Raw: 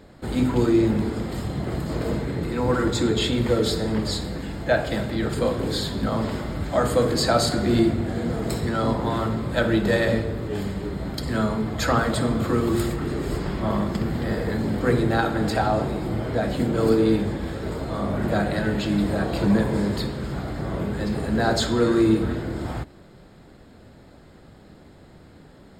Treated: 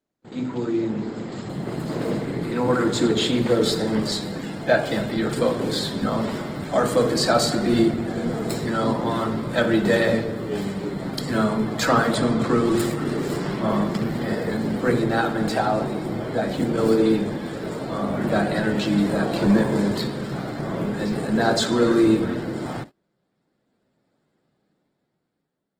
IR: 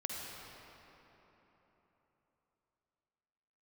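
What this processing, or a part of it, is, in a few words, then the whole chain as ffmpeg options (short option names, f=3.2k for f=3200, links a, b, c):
video call: -filter_complex "[0:a]asettb=1/sr,asplit=3[a][b][c];[a]atrim=end=12.154[d];[b]atrim=start=12.15:end=12.79,asetpts=PTS-STARTPTS,afade=t=in:d=0.004:c=qsin,afade=t=out:st=0.636:d=0.004:c=qsin,lowpass=8.2k[e];[c]atrim=start=12.786[f];[d][e]acrossfade=d=0.004:c1=hsin:c2=qsin[g];[g][f]acrossfade=d=0.004:c1=qsin:c2=hsin,highpass=f=130:w=0.5412,highpass=f=130:w=1.3066,dynaudnorm=f=370:g=7:m=14dB,agate=range=-27dB:threshold=-30dB:ratio=16:detection=peak,volume=-6dB" -ar 48000 -c:a libopus -b:a 16k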